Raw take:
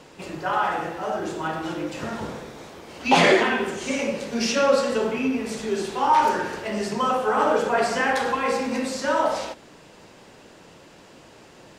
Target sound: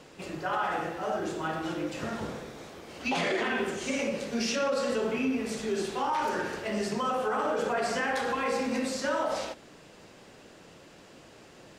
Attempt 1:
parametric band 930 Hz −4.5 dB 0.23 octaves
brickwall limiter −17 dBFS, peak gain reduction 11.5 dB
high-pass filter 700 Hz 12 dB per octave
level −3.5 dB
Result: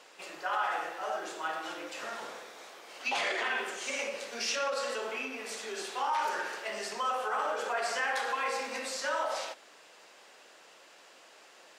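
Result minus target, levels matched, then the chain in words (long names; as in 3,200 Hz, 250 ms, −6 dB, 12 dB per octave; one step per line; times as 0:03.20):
500 Hz band −3.5 dB
parametric band 930 Hz −4.5 dB 0.23 octaves
brickwall limiter −17 dBFS, peak gain reduction 11.5 dB
level −3.5 dB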